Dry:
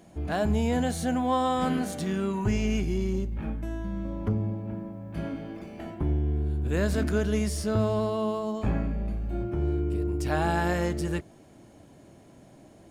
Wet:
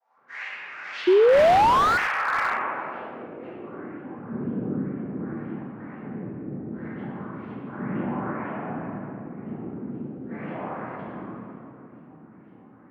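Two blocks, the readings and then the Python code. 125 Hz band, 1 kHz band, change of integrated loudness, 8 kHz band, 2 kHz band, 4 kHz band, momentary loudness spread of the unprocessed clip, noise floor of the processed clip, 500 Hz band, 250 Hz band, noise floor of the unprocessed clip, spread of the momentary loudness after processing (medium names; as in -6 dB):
-8.5 dB, +8.0 dB, +3.0 dB, no reading, +7.5 dB, +2.0 dB, 9 LU, -50 dBFS, +5.5 dB, -2.5 dB, -53 dBFS, 20 LU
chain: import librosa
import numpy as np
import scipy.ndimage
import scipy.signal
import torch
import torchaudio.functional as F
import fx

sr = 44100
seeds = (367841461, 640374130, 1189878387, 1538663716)

p1 = fx.rattle_buzz(x, sr, strikes_db=-27.0, level_db=-34.0)
p2 = scipy.signal.sosfilt(scipy.signal.cheby2(4, 40, [180.0, 440.0], 'bandstop', fs=sr, output='sos'), p1)
p3 = fx.spec_gate(p2, sr, threshold_db=-30, keep='strong')
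p4 = fx.over_compress(p3, sr, threshold_db=-37.0, ratio=-1.0)
p5 = p3 + (p4 * librosa.db_to_amplitude(-1.5))
p6 = fx.noise_vocoder(p5, sr, seeds[0], bands=3)
p7 = np.clip(p6, -10.0 ** (-21.0 / 20.0), 10.0 ** (-21.0 / 20.0))
p8 = fx.filter_lfo_lowpass(p7, sr, shape='saw_up', hz=2.0, low_hz=720.0, high_hz=3200.0, q=6.0)
p9 = fx.room_shoebox(p8, sr, seeds[1], volume_m3=130.0, walls='hard', distance_m=1.7)
p10 = fx.filter_sweep_bandpass(p9, sr, from_hz=6200.0, to_hz=220.0, start_s=0.77, end_s=4.27, q=1.5)
p11 = fx.spec_paint(p10, sr, seeds[2], shape='rise', start_s=1.07, length_s=0.91, low_hz=350.0, high_hz=1500.0, level_db=-7.0)
p12 = p11 + fx.echo_single(p11, sr, ms=77, db=-21.5, dry=0)
p13 = fx.slew_limit(p12, sr, full_power_hz=390.0)
y = p13 * librosa.db_to_amplitude(-8.5)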